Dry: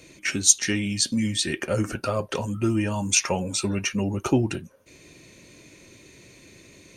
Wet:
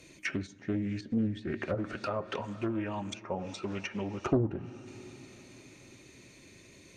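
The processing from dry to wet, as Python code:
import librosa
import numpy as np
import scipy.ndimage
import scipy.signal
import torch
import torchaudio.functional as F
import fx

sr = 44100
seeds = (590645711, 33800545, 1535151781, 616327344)

y = fx.low_shelf(x, sr, hz=230.0, db=-9.5, at=(1.74, 4.21))
y = fx.rev_plate(y, sr, seeds[0], rt60_s=4.7, hf_ratio=0.75, predelay_ms=0, drr_db=14.5)
y = fx.env_lowpass_down(y, sr, base_hz=790.0, full_db=-21.0)
y = fx.peak_eq(y, sr, hz=490.0, db=-2.5, octaves=0.29)
y = fx.doppler_dist(y, sr, depth_ms=0.53)
y = y * librosa.db_to_amplitude(-5.0)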